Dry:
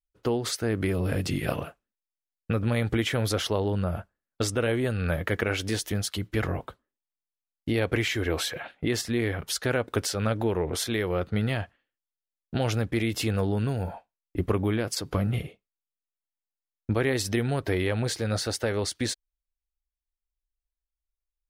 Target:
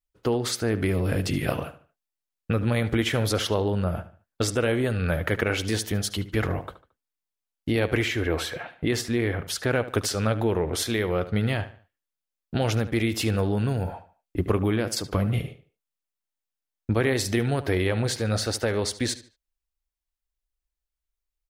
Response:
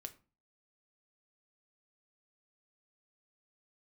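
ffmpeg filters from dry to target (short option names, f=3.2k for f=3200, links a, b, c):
-filter_complex "[0:a]asplit=2[a][b];[b]adelay=74,lowpass=f=5k:p=1,volume=-14dB,asplit=2[c][d];[d]adelay=74,lowpass=f=5k:p=1,volume=0.35,asplit=2[e][f];[f]adelay=74,lowpass=f=5k:p=1,volume=0.35[g];[c][e][g]amix=inputs=3:normalize=0[h];[a][h]amix=inputs=2:normalize=0,asplit=3[i][j][k];[i]afade=t=out:st=8.04:d=0.02[l];[j]adynamicequalizer=threshold=0.00631:dfrequency=2900:dqfactor=0.7:tfrequency=2900:tqfactor=0.7:attack=5:release=100:ratio=0.375:range=3.5:mode=cutabove:tftype=highshelf,afade=t=in:st=8.04:d=0.02,afade=t=out:st=9.74:d=0.02[m];[k]afade=t=in:st=9.74:d=0.02[n];[l][m][n]amix=inputs=3:normalize=0,volume=2dB"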